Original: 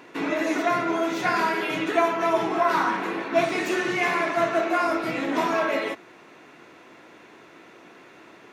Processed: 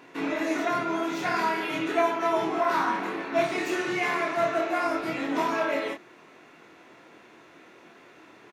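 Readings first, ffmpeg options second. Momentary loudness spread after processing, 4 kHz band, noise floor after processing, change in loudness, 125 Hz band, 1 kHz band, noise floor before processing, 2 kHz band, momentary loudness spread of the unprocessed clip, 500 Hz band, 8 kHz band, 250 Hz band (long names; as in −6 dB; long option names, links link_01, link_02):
4 LU, −3.0 dB, −53 dBFS, −3.0 dB, −3.5 dB, −3.0 dB, −50 dBFS, −3.5 dB, 4 LU, −3.0 dB, −3.0 dB, −2.5 dB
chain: -filter_complex "[0:a]asplit=2[link_01][link_02];[link_02]adelay=25,volume=-4dB[link_03];[link_01][link_03]amix=inputs=2:normalize=0,volume=-4.5dB"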